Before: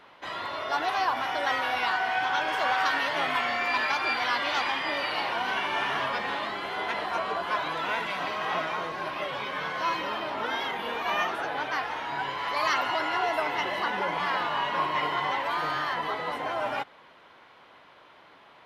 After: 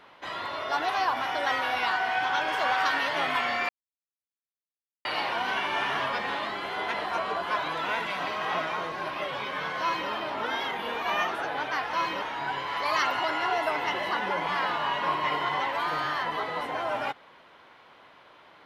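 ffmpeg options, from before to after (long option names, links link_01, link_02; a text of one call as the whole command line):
ffmpeg -i in.wav -filter_complex "[0:a]asplit=5[link_01][link_02][link_03][link_04][link_05];[link_01]atrim=end=3.69,asetpts=PTS-STARTPTS,afade=type=out:start_time=3.686:duration=0.004:curve=hsin[link_06];[link_02]atrim=start=3.69:end=5.05,asetpts=PTS-STARTPTS,volume=0[link_07];[link_03]atrim=start=5.05:end=11.932,asetpts=PTS-STARTPTS,afade=type=in:duration=0.004:curve=hsin[link_08];[link_04]atrim=start=9.808:end=10.102[link_09];[link_05]atrim=start=11.928[link_10];[link_06][link_07][link_08]concat=n=3:v=0:a=1[link_11];[link_11][link_09]acrossfade=duration=0.004:curve1=hsin:curve2=hsin[link_12];[link_12][link_10]acrossfade=duration=0.004:curve1=hsin:curve2=hsin" out.wav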